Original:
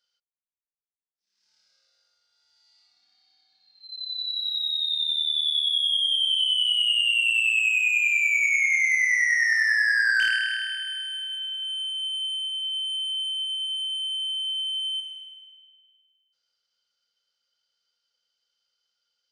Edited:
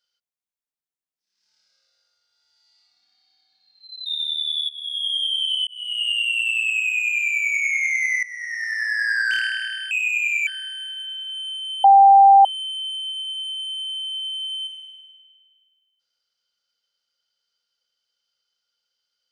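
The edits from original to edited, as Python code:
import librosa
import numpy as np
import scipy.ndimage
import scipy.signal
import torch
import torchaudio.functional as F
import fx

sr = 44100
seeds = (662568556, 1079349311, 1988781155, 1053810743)

y = fx.edit(x, sr, fx.cut(start_s=4.06, length_s=0.89),
    fx.fade_in_from(start_s=5.58, length_s=0.43, floor_db=-19.5),
    fx.fade_in_span(start_s=6.56, length_s=0.42),
    fx.duplicate(start_s=7.71, length_s=0.56, to_s=10.8),
    fx.fade_in_from(start_s=9.12, length_s=0.89, floor_db=-17.5),
    fx.bleep(start_s=12.17, length_s=0.61, hz=789.0, db=-7.0), tone=tone)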